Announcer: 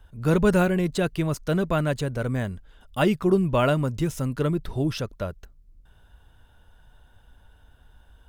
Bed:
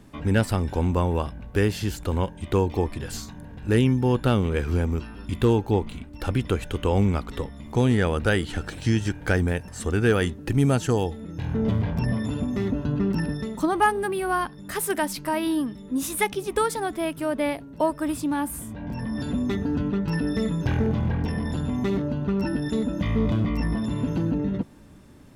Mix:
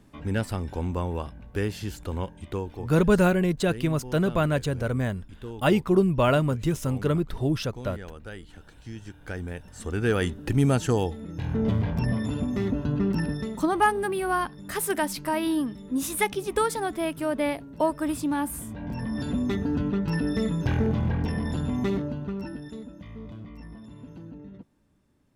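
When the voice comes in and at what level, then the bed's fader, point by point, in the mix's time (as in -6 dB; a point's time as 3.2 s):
2.65 s, 0.0 dB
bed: 2.38 s -6 dB
3.11 s -18.5 dB
8.84 s -18.5 dB
10.32 s -1 dB
21.87 s -1 dB
23.04 s -18 dB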